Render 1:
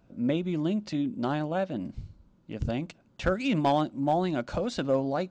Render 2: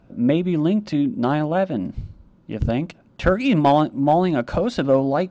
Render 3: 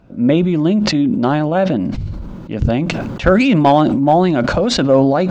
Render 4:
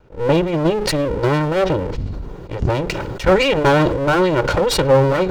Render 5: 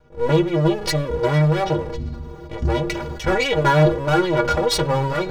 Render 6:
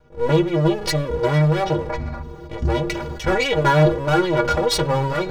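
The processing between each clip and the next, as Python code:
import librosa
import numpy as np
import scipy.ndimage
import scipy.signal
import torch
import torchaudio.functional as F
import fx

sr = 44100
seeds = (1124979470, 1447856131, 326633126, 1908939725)

y1 = fx.lowpass(x, sr, hz=3000.0, slope=6)
y1 = y1 * librosa.db_to_amplitude(9.0)
y2 = fx.sustainer(y1, sr, db_per_s=26.0)
y2 = y2 * librosa.db_to_amplitude(4.5)
y3 = fx.lower_of_two(y2, sr, delay_ms=2.1)
y3 = fx.attack_slew(y3, sr, db_per_s=310.0)
y4 = fx.stiff_resonator(y3, sr, f0_hz=71.0, decay_s=0.36, stiffness=0.03)
y4 = y4 * librosa.db_to_amplitude(6.5)
y5 = fx.spec_box(y4, sr, start_s=1.9, length_s=0.32, low_hz=520.0, high_hz=2600.0, gain_db=12)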